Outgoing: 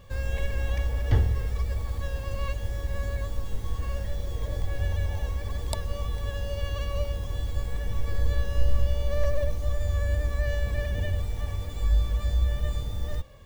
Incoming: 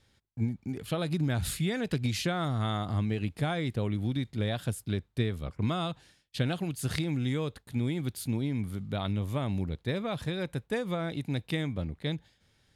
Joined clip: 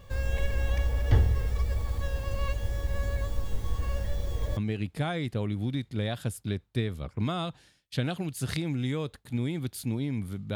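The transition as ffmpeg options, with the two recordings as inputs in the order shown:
-filter_complex "[0:a]apad=whole_dur=10.55,atrim=end=10.55,atrim=end=4.572[a];[1:a]atrim=start=2.988:end=8.97[b];[a][b]acrossfade=d=0.004:c1=hsin:c2=hsin"

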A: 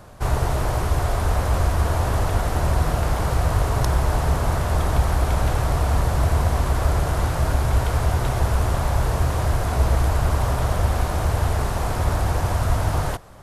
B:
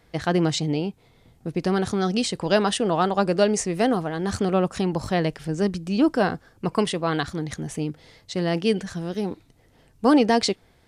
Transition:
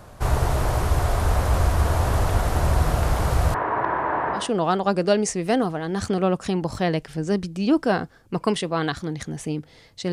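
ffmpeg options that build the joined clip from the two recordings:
-filter_complex "[0:a]asettb=1/sr,asplit=3[a][b][c];[a]atrim=end=3.544[d];[b]atrim=start=3.54:end=4.51,asetpts=PTS-STARTPTS,afade=t=in:d=0.004:c=qsin,afade=t=out:st=0.966:d=0.004:c=qsin,highpass=310,equalizer=f=320:t=q:w=4:g=6,equalizer=f=980:t=q:w=4:g=9,equalizer=f=1.7k:t=q:w=4:g=7,lowpass=f=2.2k:w=0.5412,lowpass=f=2.2k:w=1.3066[e];[c]atrim=start=4.506[f];[d][e]acrossfade=d=0.004:c1=hsin:c2=qsin[g];[g][f]acrossfade=d=0.004:c1=qsin:c2=hsin,apad=whole_dur=10.12,atrim=end=10.12,atrim=end=4.51,asetpts=PTS-STARTPTS[h];[1:a]atrim=start=2.62:end=8.43,asetpts=PTS-STARTPTS[i];[h][i]acrossfade=d=0.2:c1=tri:c2=tri"

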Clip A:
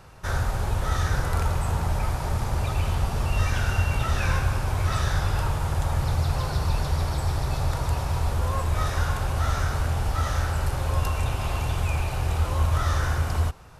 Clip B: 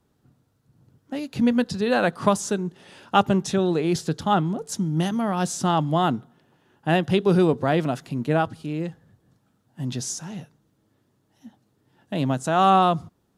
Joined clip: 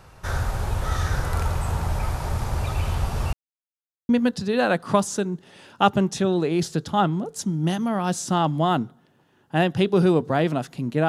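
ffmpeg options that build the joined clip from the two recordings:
-filter_complex "[0:a]apad=whole_dur=11.08,atrim=end=11.08,asplit=2[a][b];[a]atrim=end=3.33,asetpts=PTS-STARTPTS,afade=t=out:st=3.326:d=0.004:c=hsin[c];[b]atrim=start=3.33:end=4.09,asetpts=PTS-STARTPTS,volume=0[d];[1:a]atrim=start=1.42:end=8.41,asetpts=PTS-STARTPTS,afade=t=in:d=0.004:c=hsin[e];[c][d][e]concat=n=3:v=0:a=1"

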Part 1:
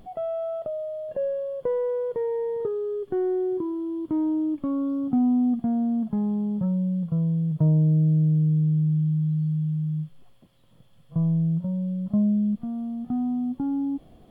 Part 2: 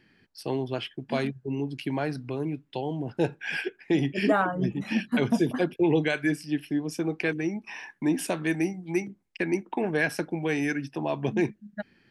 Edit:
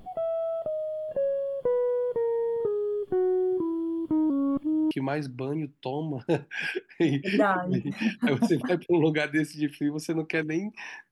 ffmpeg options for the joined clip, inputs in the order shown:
-filter_complex "[0:a]apad=whole_dur=11.11,atrim=end=11.11,asplit=2[a][b];[a]atrim=end=4.302[c];[b]atrim=start=4.298:end=4.912,asetpts=PTS-STARTPTS,areverse[d];[1:a]atrim=start=1.808:end=8.01[e];[c][d]acrossfade=d=0.004:c1=hsin:c2=hsin[f];[f][e]acrossfade=d=0.004:c1=hsin:c2=hsin"

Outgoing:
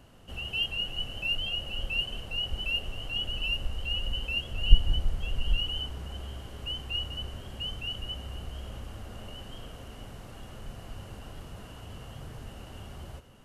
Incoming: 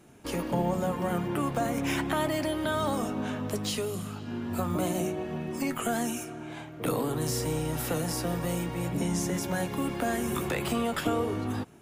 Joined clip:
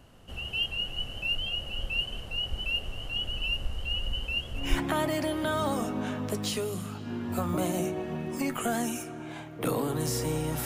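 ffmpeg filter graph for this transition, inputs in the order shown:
-filter_complex "[0:a]apad=whole_dur=10.65,atrim=end=10.65,atrim=end=4.81,asetpts=PTS-STARTPTS[a];[1:a]atrim=start=1.74:end=7.86,asetpts=PTS-STARTPTS[b];[a][b]acrossfade=d=0.28:c1=tri:c2=tri"

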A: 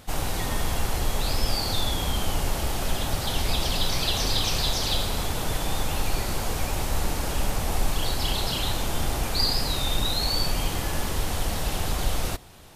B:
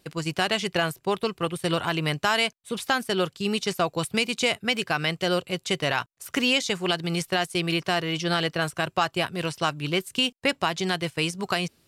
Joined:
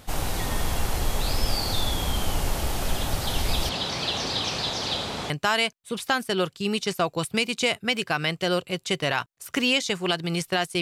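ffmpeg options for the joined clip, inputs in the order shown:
-filter_complex "[0:a]asettb=1/sr,asplit=3[a][b][c];[a]atrim=end=3.694[d];[b]atrim=start=3.69:end=5.3,asetpts=PTS-STARTPTS,afade=t=in:d=0.004:c=qsin,afade=t=out:st=1.606:d=0.004:c=qsin,highpass=140,lowpass=5.5k[e];[c]atrim=start=5.296[f];[d][e]acrossfade=d=0.004:c1=hsin:c2=qsin[g];[g][f]acrossfade=d=0.004:c1=qsin:c2=hsin,apad=whole_dur=10.81,atrim=end=10.81,atrim=end=5.302[h];[1:a]atrim=start=2.098:end=7.61[i];[h][i]acrossfade=d=0.004:c1=hsin:c2=hsin"

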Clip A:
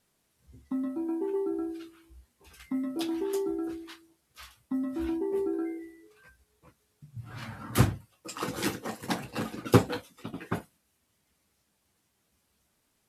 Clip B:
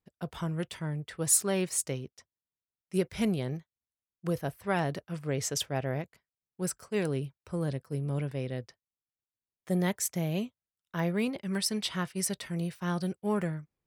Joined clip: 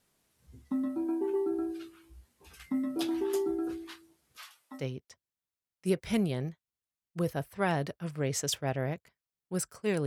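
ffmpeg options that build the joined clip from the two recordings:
-filter_complex "[0:a]asettb=1/sr,asplit=3[a][b][c];[a]atrim=end=4.374[d];[b]atrim=start=4.37:end=4.85,asetpts=PTS-STARTPTS,afade=t=in:d=0.004:c=qsin,afade=t=out:st=0.476:d=0.004:c=qsin,highpass=650[e];[c]atrim=start=4.846[f];[d][e]acrossfade=d=0.004:c1=hsin:c2=qsin[g];[g][f]acrossfade=d=0.004:c1=qsin:c2=hsin,apad=whole_dur=10.06,atrim=end=10.06,atrim=end=4.85,asetpts=PTS-STARTPTS[h];[1:a]atrim=start=1.83:end=7.14,asetpts=PTS-STARTPTS[i];[h][i]acrossfade=d=0.1:c1=tri:c2=tri"

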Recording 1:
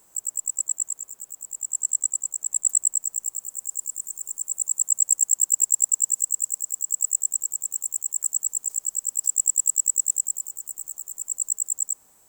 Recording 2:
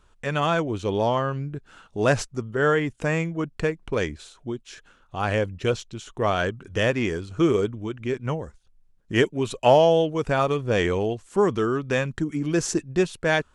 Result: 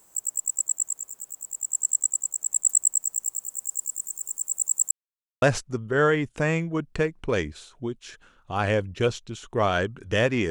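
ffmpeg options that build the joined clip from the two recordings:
-filter_complex "[0:a]apad=whole_dur=10.5,atrim=end=10.5,asplit=2[a][b];[a]atrim=end=4.91,asetpts=PTS-STARTPTS,afade=t=out:st=4.906:d=0.004:c=hsin[c];[b]atrim=start=4.91:end=5.42,asetpts=PTS-STARTPTS,volume=0[d];[1:a]atrim=start=2.06:end=7.14,asetpts=PTS-STARTPTS,afade=t=in:d=0.004:c=hsin[e];[c][d][e]concat=n=3:v=0:a=1"

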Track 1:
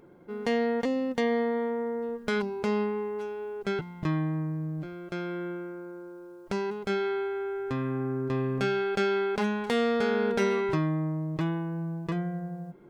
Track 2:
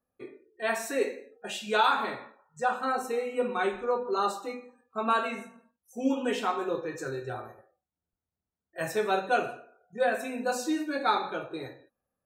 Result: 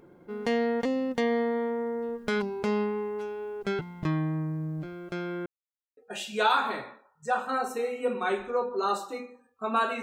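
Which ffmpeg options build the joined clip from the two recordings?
-filter_complex "[0:a]apad=whole_dur=10.02,atrim=end=10.02,asplit=2[a][b];[a]atrim=end=5.46,asetpts=PTS-STARTPTS,afade=t=out:st=5.456:d=0.004:c=hsin[c];[b]atrim=start=5.46:end=5.97,asetpts=PTS-STARTPTS,volume=0[d];[1:a]atrim=start=1.31:end=5.36,asetpts=PTS-STARTPTS,afade=t=in:d=0.004:c=hsin[e];[c][d][e]concat=n=3:v=0:a=1"

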